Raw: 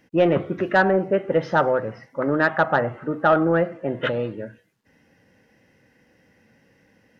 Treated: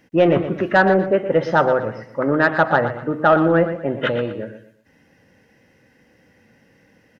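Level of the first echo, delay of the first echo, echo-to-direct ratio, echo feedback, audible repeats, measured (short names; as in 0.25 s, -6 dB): -11.0 dB, 0.12 s, -10.5 dB, 31%, 3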